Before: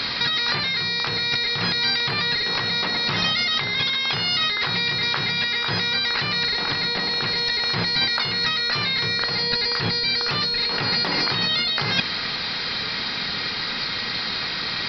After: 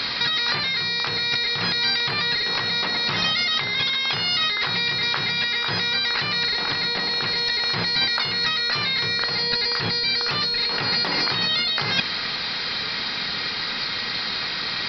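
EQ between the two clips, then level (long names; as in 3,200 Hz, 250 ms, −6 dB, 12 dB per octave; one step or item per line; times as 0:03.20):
low-shelf EQ 330 Hz −3.5 dB
0.0 dB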